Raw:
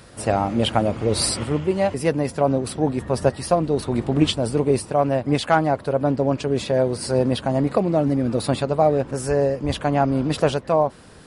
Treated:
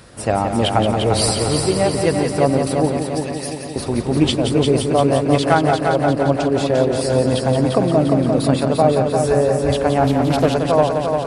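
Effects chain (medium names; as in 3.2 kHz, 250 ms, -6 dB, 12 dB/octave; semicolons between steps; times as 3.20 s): 2.97–3.76 s: Chebyshev high-pass 1.7 kHz, order 10; multi-head delay 174 ms, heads first and second, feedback 63%, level -7.5 dB; 9.98–10.56 s: loudspeaker Doppler distortion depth 0.29 ms; trim +2 dB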